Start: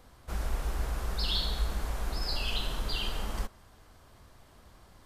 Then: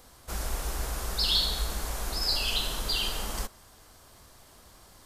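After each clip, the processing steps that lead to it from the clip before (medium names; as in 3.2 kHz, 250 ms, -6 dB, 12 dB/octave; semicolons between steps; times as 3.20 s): tone controls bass -4 dB, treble +9 dB; trim +2.5 dB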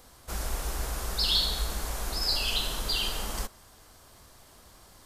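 no audible change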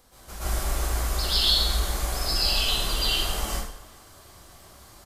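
speakerphone echo 390 ms, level -20 dB; plate-style reverb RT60 0.6 s, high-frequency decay 0.9×, pre-delay 110 ms, DRR -9.5 dB; trim -5 dB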